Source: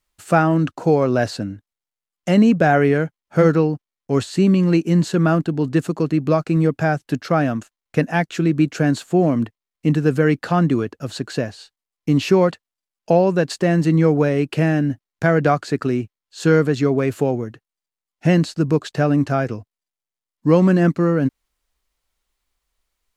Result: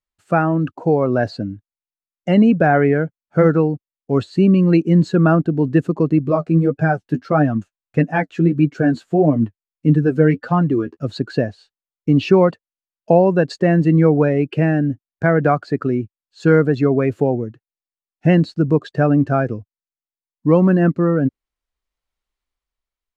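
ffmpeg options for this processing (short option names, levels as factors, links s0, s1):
-filter_complex "[0:a]asettb=1/sr,asplit=3[s0][s1][s2];[s0]atrim=end=6.194[s3];[s1]atrim=start=6.19:end=10.97,asetpts=PTS-STARTPTS,afade=t=in:d=0.004:c=qsin,afade=t=out:st=4.776:d=0.004:c=qsin,flanger=delay=6.6:depth=6.2:regen=26:speed=1.6:shape=sinusoidal[s4];[s2]atrim=start=10.966[s5];[s3][s4]acrossfade=d=0.004:c1=hsin:c2=qsin[s6];[s6][s5]acrossfade=d=0.004:c1=qsin:c2=hsin,afftdn=nr=13:nf=-29,highshelf=f=7600:g=-11.5,dynaudnorm=f=170:g=11:m=3.76,volume=0.891"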